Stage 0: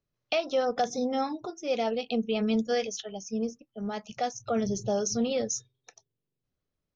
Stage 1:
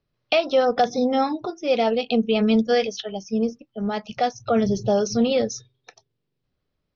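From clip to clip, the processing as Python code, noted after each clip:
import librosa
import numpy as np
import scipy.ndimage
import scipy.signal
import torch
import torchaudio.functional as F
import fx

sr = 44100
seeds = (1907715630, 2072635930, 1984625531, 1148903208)

y = scipy.signal.sosfilt(scipy.signal.butter(6, 5200.0, 'lowpass', fs=sr, output='sos'), x)
y = F.gain(torch.from_numpy(y), 8.0).numpy()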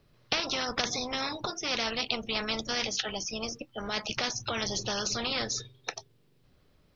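y = fx.spectral_comp(x, sr, ratio=4.0)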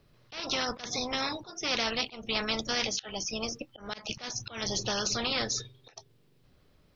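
y = fx.auto_swell(x, sr, attack_ms=204.0)
y = F.gain(torch.from_numpy(y), 1.0).numpy()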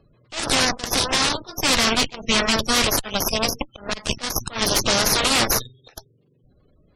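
y = fx.cheby_harmonics(x, sr, harmonics=(8,), levels_db=(-7,), full_scale_db=-15.0)
y = fx.spec_gate(y, sr, threshold_db=-20, keep='strong')
y = F.gain(torch.from_numpy(y), 7.0).numpy()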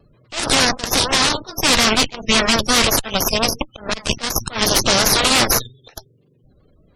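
y = fx.vibrato(x, sr, rate_hz=5.6, depth_cents=62.0)
y = F.gain(torch.from_numpy(y), 4.0).numpy()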